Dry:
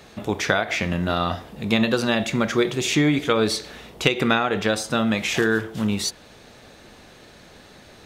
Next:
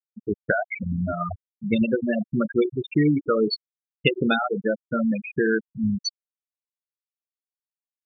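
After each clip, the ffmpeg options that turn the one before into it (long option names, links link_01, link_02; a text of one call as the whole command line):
ffmpeg -i in.wav -filter_complex "[0:a]afftfilt=real='re*gte(hypot(re,im),0.316)':imag='im*gte(hypot(re,im),0.316)':win_size=1024:overlap=0.75,acrossover=split=3800[link_01][link_02];[link_02]acontrast=31[link_03];[link_01][link_03]amix=inputs=2:normalize=0" out.wav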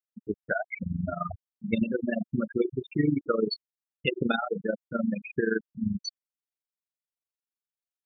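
ffmpeg -i in.wav -af "tremolo=f=23:d=0.788,volume=-2dB" out.wav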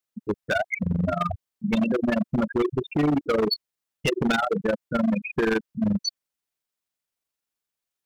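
ffmpeg -i in.wav -af "asoftclip=type=hard:threshold=-26.5dB,volume=8dB" out.wav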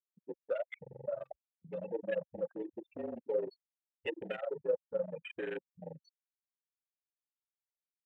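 ffmpeg -i in.wav -filter_complex "[0:a]afreqshift=-41,asplit=3[link_01][link_02][link_03];[link_01]bandpass=frequency=530:width_type=q:width=8,volume=0dB[link_04];[link_02]bandpass=frequency=1840:width_type=q:width=8,volume=-6dB[link_05];[link_03]bandpass=frequency=2480:width_type=q:width=8,volume=-9dB[link_06];[link_04][link_05][link_06]amix=inputs=3:normalize=0,afwtdn=0.00794,volume=-2dB" out.wav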